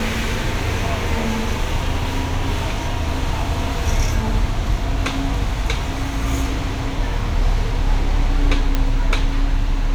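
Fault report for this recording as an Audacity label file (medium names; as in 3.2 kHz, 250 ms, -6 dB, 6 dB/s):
8.750000	8.750000	pop -5 dBFS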